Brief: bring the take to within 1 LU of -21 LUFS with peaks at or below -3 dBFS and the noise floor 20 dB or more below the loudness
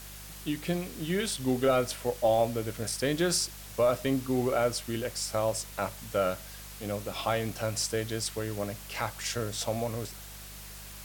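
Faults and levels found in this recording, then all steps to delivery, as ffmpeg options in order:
hum 50 Hz; highest harmonic 200 Hz; hum level -46 dBFS; noise floor -45 dBFS; noise floor target -51 dBFS; loudness -30.5 LUFS; peak level -16.0 dBFS; loudness target -21.0 LUFS
-> -af "bandreject=f=50:t=h:w=4,bandreject=f=100:t=h:w=4,bandreject=f=150:t=h:w=4,bandreject=f=200:t=h:w=4"
-af "afftdn=nr=6:nf=-45"
-af "volume=2.99"

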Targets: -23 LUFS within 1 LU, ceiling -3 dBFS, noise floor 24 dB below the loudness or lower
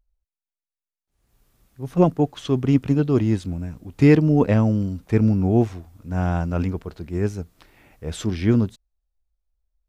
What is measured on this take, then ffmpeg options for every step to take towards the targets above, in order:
loudness -21.0 LUFS; peak level -4.0 dBFS; loudness target -23.0 LUFS
-> -af "volume=0.794"

